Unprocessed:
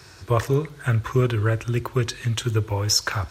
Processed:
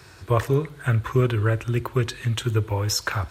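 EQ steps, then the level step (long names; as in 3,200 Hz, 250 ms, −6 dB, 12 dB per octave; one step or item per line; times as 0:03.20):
parametric band 5,700 Hz −6 dB 0.7 octaves
0.0 dB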